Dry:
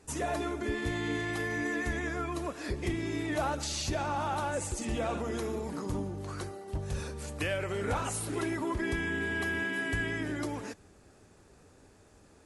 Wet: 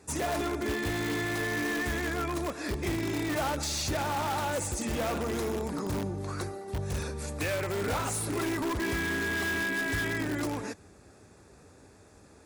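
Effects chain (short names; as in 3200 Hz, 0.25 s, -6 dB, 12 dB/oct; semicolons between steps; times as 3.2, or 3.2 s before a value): HPF 49 Hz 24 dB/oct; notch 3000 Hz, Q 7.2; in parallel at -5.5 dB: wrapped overs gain 28 dB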